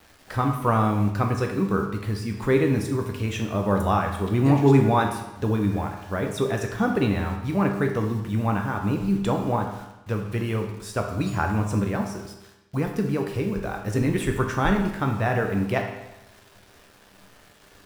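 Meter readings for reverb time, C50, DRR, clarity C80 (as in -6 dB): 0.95 s, 6.0 dB, 2.5 dB, 8.5 dB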